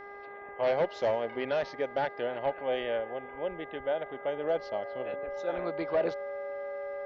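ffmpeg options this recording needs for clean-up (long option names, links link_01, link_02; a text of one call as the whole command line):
ffmpeg -i in.wav -af "bandreject=frequency=404.1:width_type=h:width=4,bandreject=frequency=808.2:width_type=h:width=4,bandreject=frequency=1212.3:width_type=h:width=4,bandreject=frequency=1616.4:width_type=h:width=4,bandreject=frequency=2020.5:width_type=h:width=4,bandreject=frequency=570:width=30" out.wav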